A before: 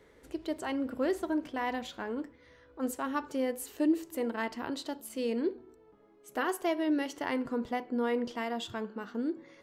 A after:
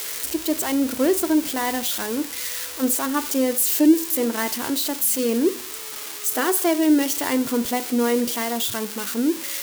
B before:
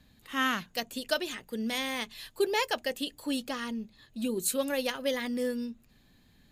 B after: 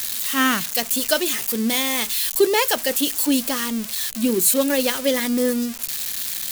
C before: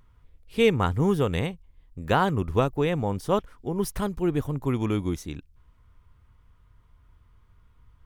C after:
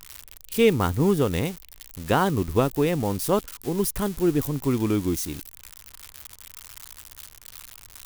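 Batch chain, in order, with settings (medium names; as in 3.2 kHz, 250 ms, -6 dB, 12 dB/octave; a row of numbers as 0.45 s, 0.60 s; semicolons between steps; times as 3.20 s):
zero-crossing glitches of -24 dBFS; dynamic bell 300 Hz, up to +5 dB, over -38 dBFS, Q 1.4; peak normalisation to -6 dBFS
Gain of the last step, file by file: +7.5 dB, +8.0 dB, -0.5 dB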